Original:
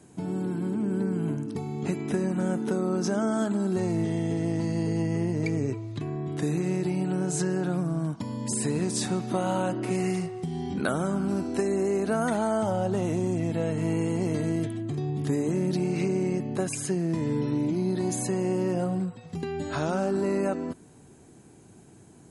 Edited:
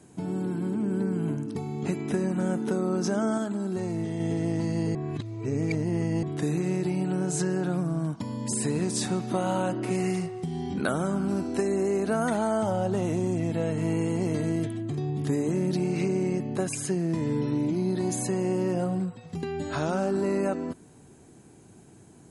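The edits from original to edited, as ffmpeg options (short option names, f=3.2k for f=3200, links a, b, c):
-filter_complex "[0:a]asplit=5[a][b][c][d][e];[a]atrim=end=3.382[f];[b]atrim=start=3.378:end=4.202,asetpts=PTS-STARTPTS,volume=-3.5dB[g];[c]atrim=start=4.198:end=4.952[h];[d]atrim=start=4.948:end=6.232,asetpts=PTS-STARTPTS,areverse[i];[e]atrim=start=6.228[j];[f][g]acrossfade=d=0.004:c1=hsin:c2=hsin[k];[k][h]acrossfade=d=0.004:c1=hsin:c2=hsin[l];[l][i]acrossfade=d=0.004:c1=hsin:c2=hsin[m];[m][j]acrossfade=d=0.004:c1=hsin:c2=hsin"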